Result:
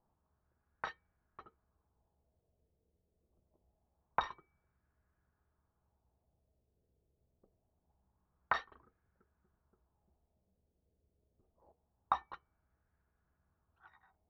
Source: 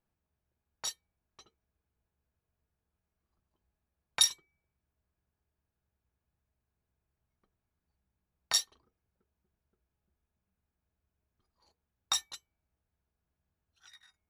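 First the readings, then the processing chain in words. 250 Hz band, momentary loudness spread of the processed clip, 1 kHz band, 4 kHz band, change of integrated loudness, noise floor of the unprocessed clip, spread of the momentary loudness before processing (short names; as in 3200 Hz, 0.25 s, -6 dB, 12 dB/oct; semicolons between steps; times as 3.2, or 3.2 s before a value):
n/a, 17 LU, +9.0 dB, -23.0 dB, -9.0 dB, under -85 dBFS, 22 LU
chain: LFO low-pass sine 0.25 Hz 490–1600 Hz; air absorption 220 m; gain +4.5 dB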